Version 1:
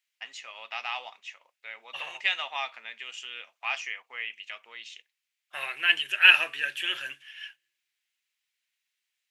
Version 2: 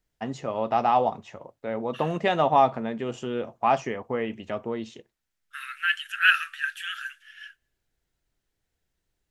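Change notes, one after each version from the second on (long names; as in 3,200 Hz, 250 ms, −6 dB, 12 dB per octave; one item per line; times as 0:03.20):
second voice: add Butterworth high-pass 1,300 Hz 96 dB per octave
master: remove high-pass with resonance 2,400 Hz, resonance Q 2.5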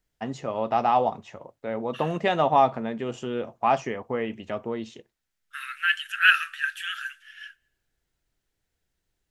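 second voice: send +8.5 dB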